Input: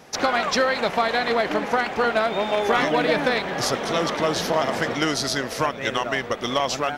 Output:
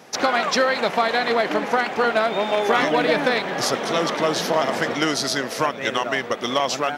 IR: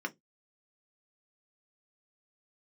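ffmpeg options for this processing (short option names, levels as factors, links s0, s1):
-af "highpass=150,volume=1.19"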